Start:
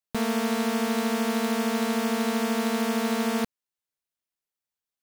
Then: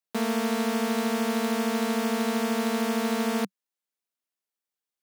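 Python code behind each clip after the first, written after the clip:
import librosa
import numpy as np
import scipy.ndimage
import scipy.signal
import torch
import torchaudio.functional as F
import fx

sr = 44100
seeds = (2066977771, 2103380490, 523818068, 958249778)

y = scipy.signal.sosfilt(scipy.signal.ellip(4, 1.0, 40, 190.0, 'highpass', fs=sr, output='sos'), x)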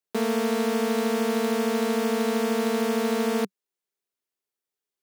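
y = fx.peak_eq(x, sr, hz=400.0, db=10.5, octaves=0.36)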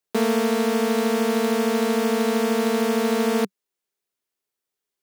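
y = fx.rider(x, sr, range_db=10, speed_s=0.5)
y = F.gain(torch.from_numpy(y), 3.5).numpy()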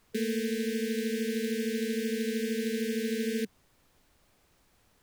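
y = fx.brickwall_bandstop(x, sr, low_hz=470.0, high_hz=1500.0)
y = fx.dmg_noise_colour(y, sr, seeds[0], colour='pink', level_db=-58.0)
y = F.gain(torch.from_numpy(y), -8.5).numpy()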